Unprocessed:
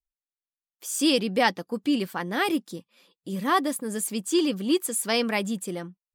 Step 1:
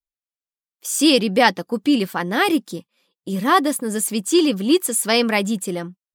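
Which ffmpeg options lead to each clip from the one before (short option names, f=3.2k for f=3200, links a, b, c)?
-af "agate=range=-13dB:threshold=-44dB:ratio=16:detection=peak,volume=7dB"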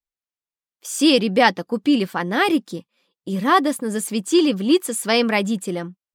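-af "highshelf=f=8.1k:g=-9.5"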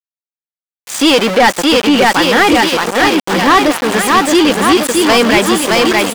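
-filter_complex "[0:a]aecho=1:1:620|1147|1595|1976|2299:0.631|0.398|0.251|0.158|0.1,aeval=exprs='val(0)*gte(abs(val(0)),0.0596)':c=same,asplit=2[a][b];[b]highpass=f=720:p=1,volume=24dB,asoftclip=type=tanh:threshold=-0.5dB[c];[a][c]amix=inputs=2:normalize=0,lowpass=f=4k:p=1,volume=-6dB"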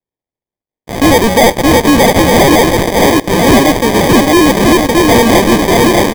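-af "acrusher=samples=32:mix=1:aa=0.000001,asoftclip=type=tanh:threshold=-7.5dB,aecho=1:1:367|734|1101|1468|1835:0.106|0.0614|0.0356|0.0207|0.012,volume=5dB"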